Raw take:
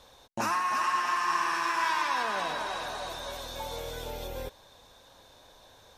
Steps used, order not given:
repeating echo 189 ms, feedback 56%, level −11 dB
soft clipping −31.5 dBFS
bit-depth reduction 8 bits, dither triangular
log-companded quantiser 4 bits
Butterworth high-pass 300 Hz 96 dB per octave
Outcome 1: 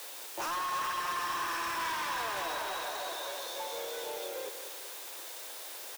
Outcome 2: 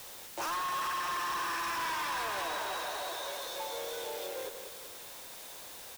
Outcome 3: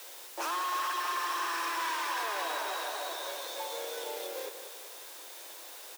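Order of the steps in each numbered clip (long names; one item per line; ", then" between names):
bit-depth reduction, then log-companded quantiser, then Butterworth high-pass, then soft clipping, then repeating echo
repeating echo, then log-companded quantiser, then Butterworth high-pass, then bit-depth reduction, then soft clipping
soft clipping, then log-companded quantiser, then repeating echo, then bit-depth reduction, then Butterworth high-pass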